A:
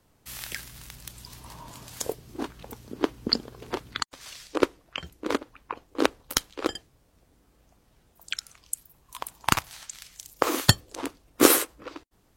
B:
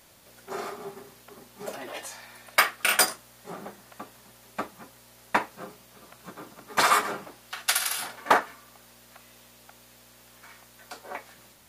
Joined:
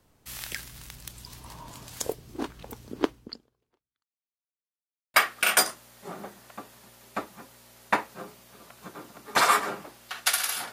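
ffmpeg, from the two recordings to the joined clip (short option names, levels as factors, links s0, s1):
-filter_complex "[0:a]apad=whole_dur=10.72,atrim=end=10.72,asplit=2[s0][s1];[s0]atrim=end=4.68,asetpts=PTS-STARTPTS,afade=t=out:st=3.04:d=1.64:c=exp[s2];[s1]atrim=start=4.68:end=5.14,asetpts=PTS-STARTPTS,volume=0[s3];[1:a]atrim=start=2.56:end=8.14,asetpts=PTS-STARTPTS,afade=t=in:d=0.004:c=hsin[s4];[s2][s3][s4]concat=n=3:v=0:a=1"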